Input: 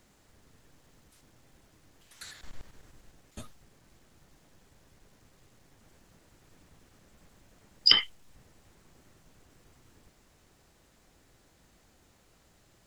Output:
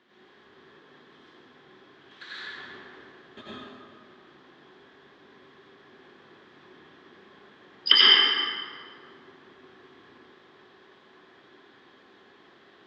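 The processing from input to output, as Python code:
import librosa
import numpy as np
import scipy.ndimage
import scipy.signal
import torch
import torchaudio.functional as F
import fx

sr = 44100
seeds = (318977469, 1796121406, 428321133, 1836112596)

y = fx.cabinet(x, sr, low_hz=240.0, low_slope=12, high_hz=4100.0, hz=(270.0, 380.0, 570.0, 1100.0, 1700.0, 3300.0), db=(4, 9, -3, 7, 9, 9))
y = fx.rev_plate(y, sr, seeds[0], rt60_s=2.0, hf_ratio=0.6, predelay_ms=75, drr_db=-9.0)
y = y * librosa.db_to_amplitude(-2.5)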